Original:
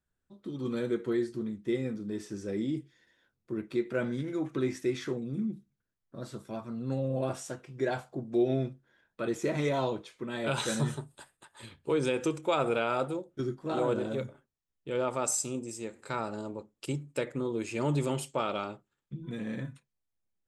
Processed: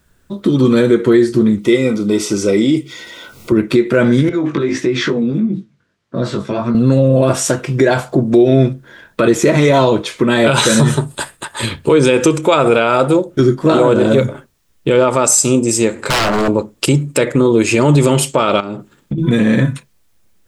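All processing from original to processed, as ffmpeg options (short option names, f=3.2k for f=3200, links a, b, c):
-filter_complex "[0:a]asettb=1/sr,asplit=3[a][b][c];[a]atrim=end=1.584[d];[b]atrim=start=1.58:end=3.52,asetpts=PTS-STARTPTS,afade=t=in:d=0.004:c=qsin,afade=t=out:st=1.936:d=0.004:c=qsin,lowshelf=f=280:g=-11.5,acompressor=mode=upward:threshold=-48dB:ratio=2.5:attack=3.2:release=140:knee=2.83:detection=peak,asuperstop=centerf=1700:order=12:qfactor=4.8[e];[c]atrim=start=3.516[f];[d][e]acrossfade=d=0.004:c1=hsin:c2=qsin[g];[g][f]acrossfade=d=0.004:c1=qsin:c2=hsin,asettb=1/sr,asplit=3[h][i][j];[h]atrim=end=4.294[k];[i]atrim=start=4.29:end=6.75,asetpts=PTS-STARTPTS,afade=t=in:d=0.004:c=qsin,afade=t=out:st=2.456:d=0.004:c=qsin,acompressor=threshold=-36dB:ratio=10:attack=3.2:release=140:knee=1:detection=peak,flanger=delay=16:depth=5:speed=1.6,highpass=110,lowpass=4.7k[l];[j]atrim=start=6.746[m];[k][l]acrossfade=d=0.004:c1=hsin:c2=qsin[n];[n][m]acrossfade=d=0.004:c1=qsin:c2=hsin,asettb=1/sr,asplit=3[o][p][q];[o]atrim=end=15.934[r];[p]atrim=start=15.93:end=16.48,asetpts=PTS-STARTPTS,afade=t=in:d=0.004:c=qsin,afade=t=out:st=0.546:d=0.004:c=qsin,lowpass=f=4k:p=1,aeval=exprs='0.015*(abs(mod(val(0)/0.015+3,4)-2)-1)':c=same[s];[q]atrim=start=16.476[t];[r][s]acrossfade=d=0.004:c1=hsin:c2=qsin[u];[u][t]acrossfade=d=0.004:c1=qsin:c2=hsin,asettb=1/sr,asplit=3[v][w][x];[v]atrim=end=18.604[y];[w]atrim=start=18.6:end=19.18,asetpts=PTS-STARTPTS,afade=t=in:d=0.004:c=qsin,afade=t=out:st=0.576:d=0.004:c=qsin,equalizer=f=240:w=0.74:g=9.5,acompressor=threshold=-44dB:ratio=12:attack=3.2:release=140:knee=1:detection=peak[z];[x]atrim=start=19.176[aa];[y][z]acrossfade=d=0.004:c1=hsin:c2=qsin[ab];[ab][aa]acrossfade=d=0.004:c1=qsin:c2=hsin,acompressor=threshold=-40dB:ratio=2,bandreject=f=780:w=12,alimiter=level_in=29.5dB:limit=-1dB:release=50:level=0:latency=1,volume=-1dB"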